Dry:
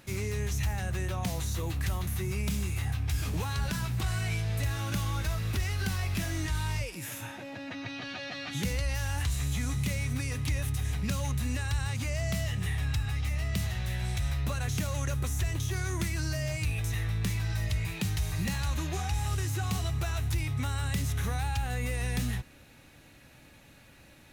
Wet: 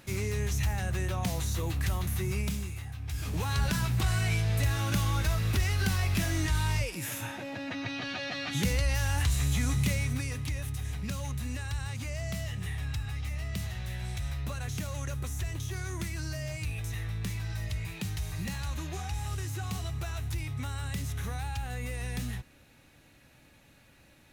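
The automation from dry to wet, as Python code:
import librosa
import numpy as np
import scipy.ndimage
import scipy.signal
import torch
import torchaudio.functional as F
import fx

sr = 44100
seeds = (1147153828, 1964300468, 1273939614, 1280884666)

y = fx.gain(x, sr, db=fx.line((2.38, 1.0), (2.9, -9.5), (3.54, 3.0), (9.88, 3.0), (10.54, -4.0)))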